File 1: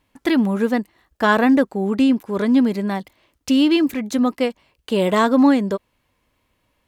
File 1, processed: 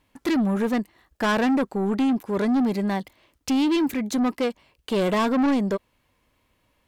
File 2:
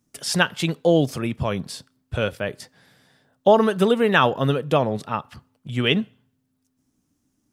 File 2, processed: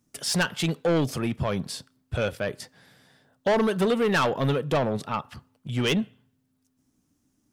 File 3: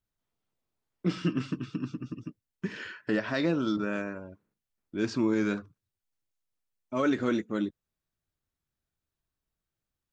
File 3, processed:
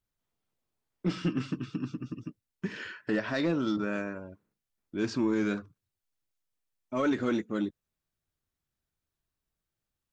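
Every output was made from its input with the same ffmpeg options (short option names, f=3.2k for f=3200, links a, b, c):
-af "asoftclip=type=tanh:threshold=-18dB"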